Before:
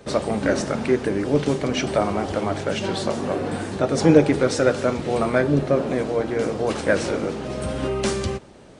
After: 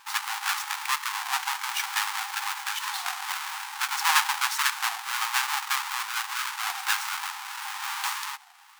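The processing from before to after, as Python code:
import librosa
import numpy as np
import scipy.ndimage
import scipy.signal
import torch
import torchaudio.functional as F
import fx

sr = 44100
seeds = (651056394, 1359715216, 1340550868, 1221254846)

y = fx.halfwave_hold(x, sr)
y = fx.brickwall_highpass(y, sr, low_hz=770.0)
y = fx.record_warp(y, sr, rpm=33.33, depth_cents=160.0)
y = y * librosa.db_to_amplitude(-4.5)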